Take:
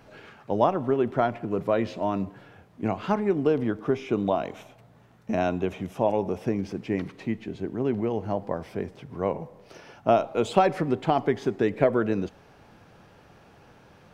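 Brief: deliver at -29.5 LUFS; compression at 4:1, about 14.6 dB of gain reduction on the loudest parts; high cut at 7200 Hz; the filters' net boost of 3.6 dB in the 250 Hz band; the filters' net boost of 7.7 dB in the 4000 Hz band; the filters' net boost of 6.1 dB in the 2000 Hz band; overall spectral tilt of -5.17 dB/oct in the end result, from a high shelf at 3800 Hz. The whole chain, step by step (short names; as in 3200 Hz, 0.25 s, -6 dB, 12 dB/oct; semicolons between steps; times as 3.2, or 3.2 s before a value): LPF 7200 Hz; bell 250 Hz +4.5 dB; bell 2000 Hz +5.5 dB; high shelf 3800 Hz +4.5 dB; bell 4000 Hz +5.5 dB; compressor 4:1, threshold -31 dBFS; gain +6 dB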